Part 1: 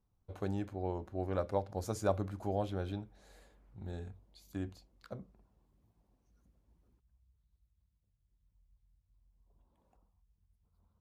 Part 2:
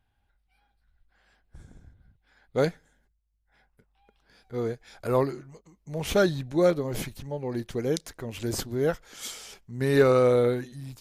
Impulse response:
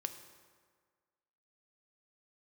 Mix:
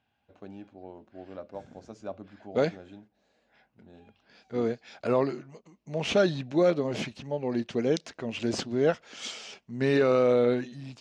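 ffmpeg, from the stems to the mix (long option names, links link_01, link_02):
-filter_complex "[0:a]equalizer=frequency=260:width_type=o:width=0.77:gain=4,volume=-15dB[link_01];[1:a]volume=-5dB[link_02];[link_01][link_02]amix=inputs=2:normalize=0,acontrast=39,highpass=150,equalizer=frequency=230:width_type=q:width=4:gain=5,equalizer=frequency=640:width_type=q:width=4:gain=5,equalizer=frequency=2700:width_type=q:width=4:gain=7,lowpass=frequency=6300:width=0.5412,lowpass=frequency=6300:width=1.3066,alimiter=limit=-13.5dB:level=0:latency=1:release=75"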